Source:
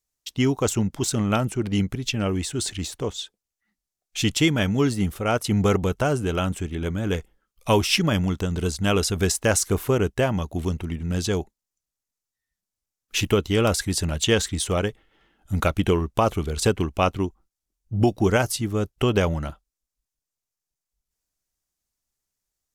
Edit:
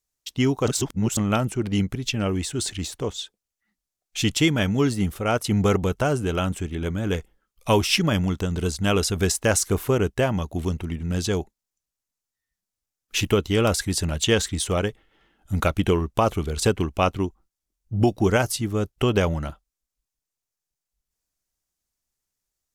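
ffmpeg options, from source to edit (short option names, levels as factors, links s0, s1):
-filter_complex "[0:a]asplit=3[s0][s1][s2];[s0]atrim=end=0.682[s3];[s1]atrim=start=0.678:end=1.172,asetpts=PTS-STARTPTS,areverse[s4];[s2]atrim=start=1.168[s5];[s3][s4]acrossfade=d=0.004:c1=hsin:c2=hsin[s6];[s6][s5]acrossfade=d=0.004:c1=hsin:c2=hsin"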